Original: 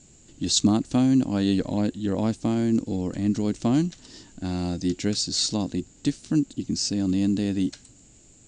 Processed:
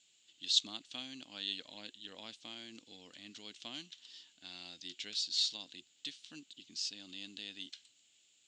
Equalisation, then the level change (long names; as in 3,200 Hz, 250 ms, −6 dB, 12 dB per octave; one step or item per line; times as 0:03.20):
resonant band-pass 3,300 Hz, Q 3.7
+1.0 dB